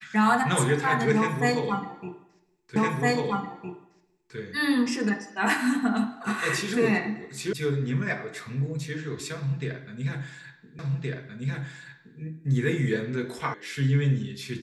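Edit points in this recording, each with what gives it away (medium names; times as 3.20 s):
2.76 s: repeat of the last 1.61 s
7.53 s: sound stops dead
10.79 s: repeat of the last 1.42 s
13.54 s: sound stops dead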